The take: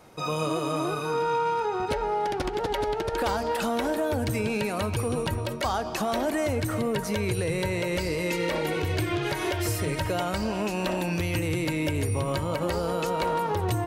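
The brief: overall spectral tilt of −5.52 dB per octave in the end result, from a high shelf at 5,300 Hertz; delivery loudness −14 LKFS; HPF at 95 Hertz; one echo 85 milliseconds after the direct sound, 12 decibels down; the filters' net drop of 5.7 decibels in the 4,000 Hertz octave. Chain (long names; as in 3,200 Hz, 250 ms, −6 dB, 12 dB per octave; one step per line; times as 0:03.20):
high-pass filter 95 Hz
parametric band 4,000 Hz −5.5 dB
high-shelf EQ 5,300 Hz −5.5 dB
single-tap delay 85 ms −12 dB
level +14.5 dB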